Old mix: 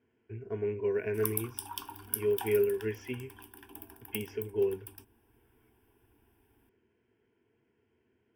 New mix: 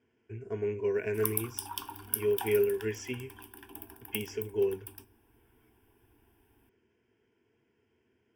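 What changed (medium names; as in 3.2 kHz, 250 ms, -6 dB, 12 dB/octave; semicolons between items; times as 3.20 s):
speech: remove distance through air 200 m; reverb: on, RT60 1.1 s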